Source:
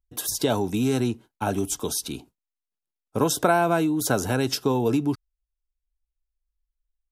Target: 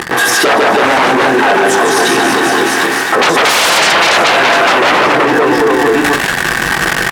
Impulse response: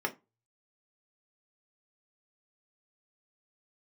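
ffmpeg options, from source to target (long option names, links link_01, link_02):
-filter_complex "[0:a]aeval=exprs='val(0)+0.5*0.0708*sgn(val(0))':channel_layout=same,agate=range=-20dB:threshold=-17dB:ratio=16:detection=peak,asplit=2[link_01][link_02];[link_02]adelay=23,volume=-9.5dB[link_03];[link_01][link_03]amix=inputs=2:normalize=0,aecho=1:1:150|322.5|520.9|749|1011:0.631|0.398|0.251|0.158|0.1,dynaudnorm=framelen=170:gausssize=9:maxgain=11.5dB,equalizer=frequency=1700:width_type=o:width=0.34:gain=10.5,asplit=2[link_04][link_05];[1:a]atrim=start_sample=2205,asetrate=38367,aresample=44100[link_06];[link_05][link_06]afir=irnorm=-1:irlink=0,volume=-7.5dB[link_07];[link_04][link_07]amix=inputs=2:normalize=0,aeval=exprs='0.708*sin(PI/2*7.08*val(0)/0.708)':channel_layout=same,acompressor=threshold=-15dB:ratio=6,highpass=620,aemphasis=mode=reproduction:type=riaa,alimiter=level_in=22dB:limit=-1dB:release=50:level=0:latency=1,volume=-1dB"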